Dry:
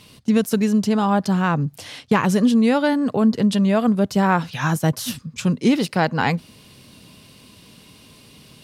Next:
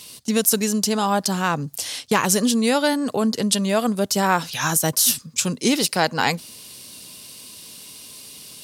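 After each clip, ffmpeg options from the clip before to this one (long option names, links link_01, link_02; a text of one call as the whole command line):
ffmpeg -i in.wav -af "bass=frequency=250:gain=-8,treble=frequency=4000:gain=15" out.wav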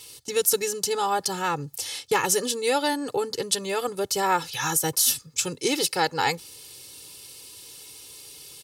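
ffmpeg -i in.wav -af "aecho=1:1:2.3:0.9,volume=-6dB" out.wav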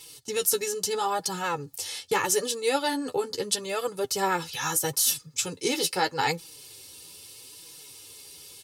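ffmpeg -i in.wav -af "flanger=delay=6:depth=6.3:regen=28:speed=0.78:shape=sinusoidal,volume=1.5dB" out.wav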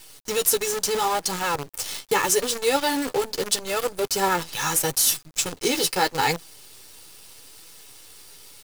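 ffmpeg -i in.wav -af "acrusher=bits=6:dc=4:mix=0:aa=0.000001,volume=3.5dB" out.wav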